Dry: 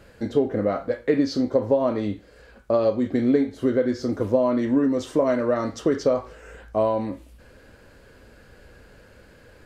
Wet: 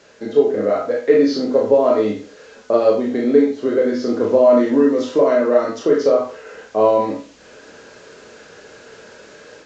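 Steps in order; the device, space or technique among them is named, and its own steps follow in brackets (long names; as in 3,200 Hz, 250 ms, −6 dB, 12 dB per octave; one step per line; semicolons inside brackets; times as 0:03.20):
filmed off a television (band-pass filter 260–6,700 Hz; parametric band 430 Hz +8 dB 0.21 octaves; convolution reverb RT60 0.35 s, pre-delay 24 ms, DRR −1.5 dB; white noise bed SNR 32 dB; automatic gain control gain up to 6 dB; AAC 64 kbit/s 16,000 Hz)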